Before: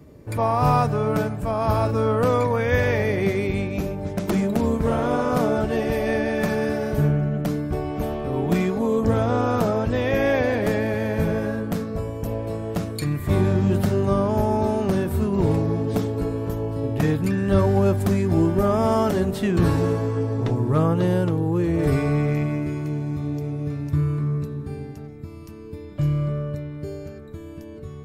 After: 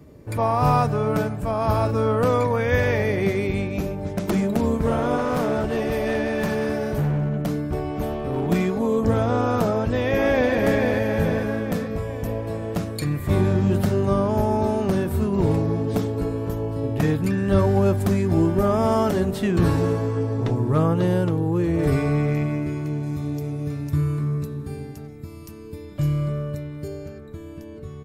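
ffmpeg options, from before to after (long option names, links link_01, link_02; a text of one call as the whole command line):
ffmpeg -i in.wav -filter_complex "[0:a]asettb=1/sr,asplit=3[link_01][link_02][link_03];[link_01]atrim=end=5.184[link_04];[link_02]atrim=start=5.18:end=8.48,asetpts=PTS-STARTPTS,afade=type=in:duration=0.004:curve=qsin,afade=type=out:start_time=3.296:duration=0.004:curve=qsin,asoftclip=type=hard:threshold=-18.5dB[link_05];[link_03]atrim=start=8.476[link_06];[link_04][link_05]acrossfade=duration=0.004:curve1=hsin:curve2=qsin[link_07];[link_07][link_06]acrossfade=duration=0.004:curve1=qsin:curve2=hsin,asplit=2[link_08][link_09];[link_09]afade=type=in:start_time=9.73:duration=0.01,afade=type=out:start_time=10.55:duration=0.01,aecho=0:1:440|880|1320|1760|2200|2640|3080|3520|3960:0.595662|0.357397|0.214438|0.128663|0.0771978|0.0463187|0.0277912|0.0166747|0.0100048[link_10];[link_08][link_10]amix=inputs=2:normalize=0,asettb=1/sr,asplit=3[link_11][link_12][link_13];[link_11]atrim=end=23.034[link_14];[link_12]atrim=start=23.03:end=26.88,asetpts=PTS-STARTPTS,afade=type=in:duration=0.004:curve=qsin,afade=type=out:start_time=3.846:duration=0.004:curve=qsin,aemphasis=mode=production:type=cd[link_15];[link_13]atrim=start=26.876[link_16];[link_14][link_15]acrossfade=duration=0.004:curve1=hsin:curve2=qsin[link_17];[link_17][link_16]acrossfade=duration=0.004:curve1=qsin:curve2=hsin" out.wav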